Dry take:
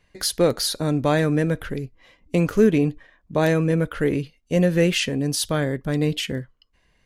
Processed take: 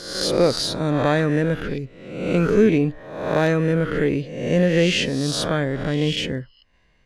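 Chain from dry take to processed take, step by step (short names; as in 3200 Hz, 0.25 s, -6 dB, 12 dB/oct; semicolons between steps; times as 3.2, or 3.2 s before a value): spectral swells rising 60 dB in 0.85 s; air absorption 70 m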